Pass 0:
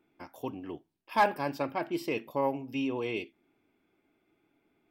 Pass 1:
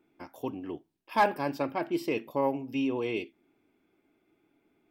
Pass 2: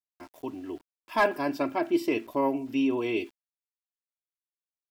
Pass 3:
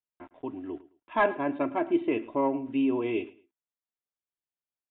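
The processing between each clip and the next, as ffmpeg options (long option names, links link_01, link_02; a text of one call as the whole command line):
ffmpeg -i in.wav -af "equalizer=frequency=320:width_type=o:width=1.4:gain=3" out.wav
ffmpeg -i in.wav -af "dynaudnorm=framelen=390:gausssize=5:maxgain=5dB,aecho=1:1:3:0.58,aeval=exprs='val(0)*gte(abs(val(0)),0.00376)':channel_layout=same,volume=-3.5dB" out.wav
ffmpeg -i in.wav -af "adynamicsmooth=sensitivity=0.5:basefreq=2800,aecho=1:1:108|216:0.112|0.0269,aresample=8000,aresample=44100" out.wav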